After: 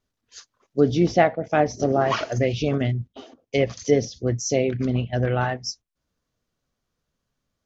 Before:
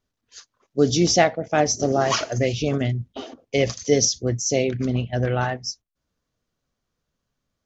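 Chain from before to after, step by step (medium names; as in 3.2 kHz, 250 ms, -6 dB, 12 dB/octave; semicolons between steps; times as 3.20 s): low-pass that closes with the level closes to 2.2 kHz, closed at -15.5 dBFS; 3.07–3.71 s: upward expansion 1.5:1, over -33 dBFS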